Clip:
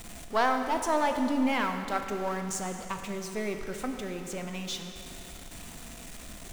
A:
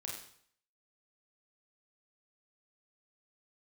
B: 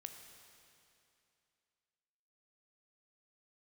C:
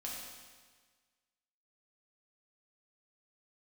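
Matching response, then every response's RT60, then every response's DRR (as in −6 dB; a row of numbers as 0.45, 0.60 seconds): B; 0.60, 2.7, 1.5 seconds; −2.5, 5.0, −4.5 decibels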